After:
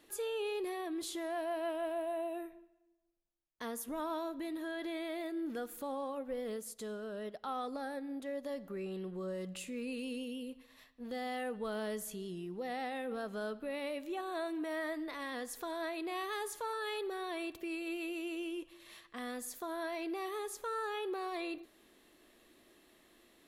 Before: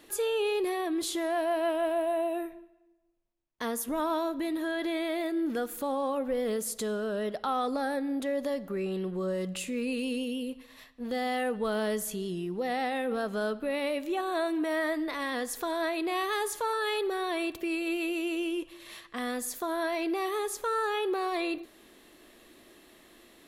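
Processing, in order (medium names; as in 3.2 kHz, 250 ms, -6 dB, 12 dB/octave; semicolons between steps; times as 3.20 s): 6.04–8.49 s: upward expansion 1.5:1, over -45 dBFS; trim -8.5 dB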